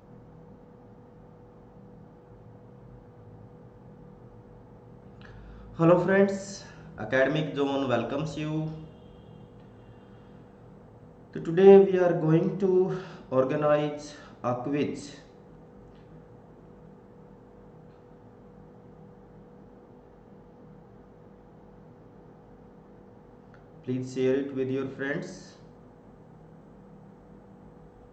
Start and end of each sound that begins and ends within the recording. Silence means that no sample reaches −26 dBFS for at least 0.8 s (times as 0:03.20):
0:05.80–0:08.67
0:11.36–0:14.91
0:23.89–0:25.18